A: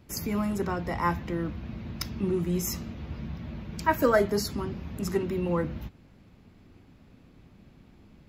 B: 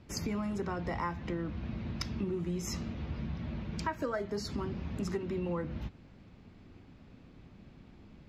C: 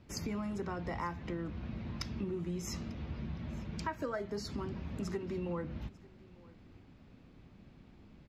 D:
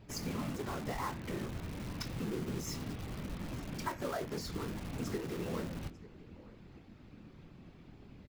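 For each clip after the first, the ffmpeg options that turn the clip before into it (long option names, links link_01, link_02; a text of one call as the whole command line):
ffmpeg -i in.wav -af "lowpass=6300,acompressor=threshold=-31dB:ratio=10" out.wav
ffmpeg -i in.wav -af "aecho=1:1:895:0.0708,volume=-3dB" out.wav
ffmpeg -i in.wav -filter_complex "[0:a]afftfilt=real='hypot(re,im)*cos(2*PI*random(0))':imag='hypot(re,im)*sin(2*PI*random(1))':win_size=512:overlap=0.75,asplit=2[link_01][link_02];[link_02]aeval=exprs='(mod(178*val(0)+1,2)-1)/178':channel_layout=same,volume=-5.5dB[link_03];[link_01][link_03]amix=inputs=2:normalize=0,asplit=2[link_04][link_05];[link_05]adelay=24,volume=-11dB[link_06];[link_04][link_06]amix=inputs=2:normalize=0,volume=5dB" out.wav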